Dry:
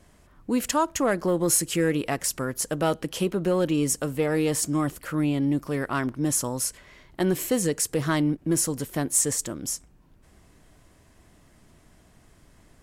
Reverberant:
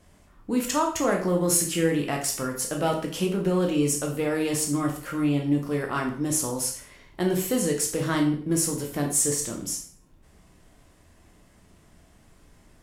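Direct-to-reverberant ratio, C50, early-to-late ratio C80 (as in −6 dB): 0.5 dB, 7.5 dB, 11.5 dB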